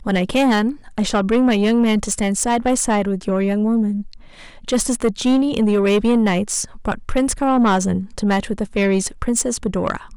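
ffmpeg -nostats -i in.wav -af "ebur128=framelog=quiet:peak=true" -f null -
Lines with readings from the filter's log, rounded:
Integrated loudness:
  I:         -18.5 LUFS
  Threshold: -28.6 LUFS
Loudness range:
  LRA:         1.8 LU
  Threshold: -38.6 LUFS
  LRA low:   -19.5 LUFS
  LRA high:  -17.7 LUFS
True peak:
  Peak:       -9.1 dBFS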